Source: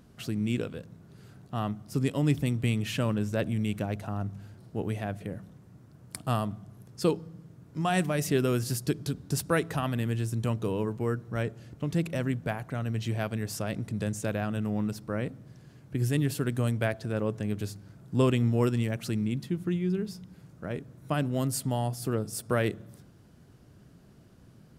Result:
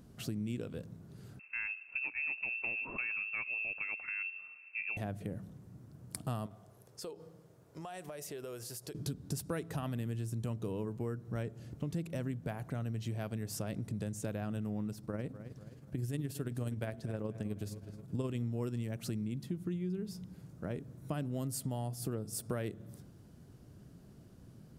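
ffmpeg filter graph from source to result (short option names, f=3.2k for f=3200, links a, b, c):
-filter_complex "[0:a]asettb=1/sr,asplit=3[a][b][c];[a]atrim=end=1.394[d];[b]atrim=start=1.39:end=4.97,asetpts=PTS-STARTPTS,afade=t=in:d=0.004:c=qsin,afade=t=out:st=3.576:d=0.004:c=qsin,asoftclip=type=hard:threshold=-20dB,lowpass=f=2.4k:t=q:w=0.5098,lowpass=f=2.4k:t=q:w=0.6013,lowpass=f=2.4k:t=q:w=0.9,lowpass=f=2.4k:t=q:w=2.563,afreqshift=-2800[e];[c]atrim=start=4.966[f];[d][e]acrossfade=d=0.004:c1=hsin:c2=qsin[g];[g][f]acrossfade=d=0.004:c1=qsin:c2=hsin,asettb=1/sr,asplit=3[h][i][j];[h]atrim=end=6.464[k];[i]atrim=start=6.46:end=8.95,asetpts=PTS-STARTPTS,afade=t=in:d=0.004:c=qsin,afade=t=out:st=2.486:d=0.004:c=qsin,lowshelf=f=340:t=q:w=1.5:g=-11,acompressor=threshold=-40dB:ratio=6:attack=3.2:release=140:knee=1:detection=peak[l];[j]atrim=start=8.946[m];[k][l]acrossfade=d=0.004:c1=hsin:c2=qsin[n];[n][m]acrossfade=d=0.004:c1=qsin:c2=hsin,asettb=1/sr,asplit=3[o][p][q];[o]atrim=end=14.944[r];[p]atrim=start=14.94:end=18.37,asetpts=PTS-STARTPTS,afade=t=in:d=0.004:c=qsin,afade=t=out:st=3.426:d=0.004:c=qsin,asplit=2[s][t];[t]adelay=245,lowpass=f=3.6k:p=1,volume=-15.5dB,asplit=2[u][v];[v]adelay=245,lowpass=f=3.6k:p=1,volume=0.47,asplit=2[w][x];[x]adelay=245,lowpass=f=3.6k:p=1,volume=0.47,asplit=2[y][z];[z]adelay=245,lowpass=f=3.6k:p=1,volume=0.47[aa];[s][u][w][y][aa]amix=inputs=5:normalize=0,atrim=end_sample=151263,tremolo=f=19:d=0.44[ab];[q]atrim=start=18.366[ac];[r][ab]acrossfade=d=0.004:c1=hsin:c2=qsin[ad];[ad][ac]acrossfade=d=0.004:c1=qsin:c2=hsin,equalizer=f=1.9k:t=o:w=2.9:g=-5.5,acompressor=threshold=-35dB:ratio=4"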